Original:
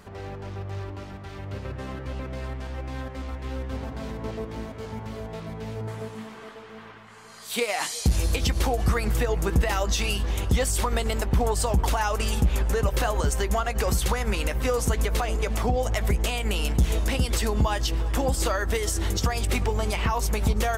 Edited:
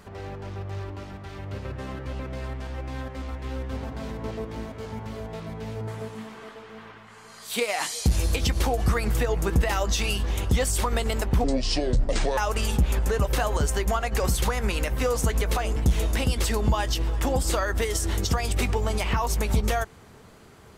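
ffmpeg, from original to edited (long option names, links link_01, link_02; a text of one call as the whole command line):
ffmpeg -i in.wav -filter_complex "[0:a]asplit=4[link_01][link_02][link_03][link_04];[link_01]atrim=end=11.444[link_05];[link_02]atrim=start=11.44:end=12.01,asetpts=PTS-STARTPTS,asetrate=26901,aresample=44100,atrim=end_sample=41208,asetpts=PTS-STARTPTS[link_06];[link_03]atrim=start=12.006:end=15.402[link_07];[link_04]atrim=start=16.688[link_08];[link_05][link_06]acrossfade=duration=0.004:curve1=hsin:curve2=hsin[link_09];[link_09][link_07]acrossfade=duration=0.004:curve1=hsin:curve2=hsin[link_10];[link_10][link_08]acrossfade=duration=0.004:curve1=hsin:curve2=hsin" out.wav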